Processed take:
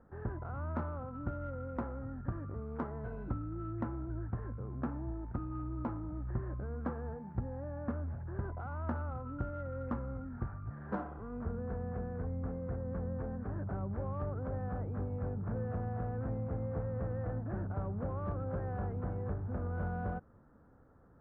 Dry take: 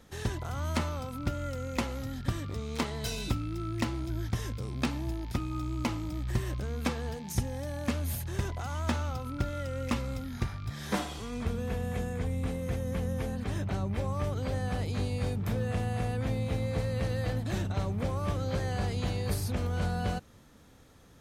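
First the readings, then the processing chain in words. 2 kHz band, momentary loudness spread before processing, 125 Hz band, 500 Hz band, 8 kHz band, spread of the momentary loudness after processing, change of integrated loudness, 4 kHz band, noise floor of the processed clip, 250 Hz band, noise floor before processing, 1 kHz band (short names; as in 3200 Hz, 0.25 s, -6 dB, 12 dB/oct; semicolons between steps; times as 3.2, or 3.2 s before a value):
-11.5 dB, 4 LU, -6.0 dB, -5.0 dB, under -35 dB, 4 LU, -6.0 dB, under -35 dB, -61 dBFS, -5.5 dB, -56 dBFS, -5.5 dB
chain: elliptic low-pass 1500 Hz, stop band 80 dB; in parallel at -9 dB: soft clip -33.5 dBFS, distortion -9 dB; on the sum: gain -6.5 dB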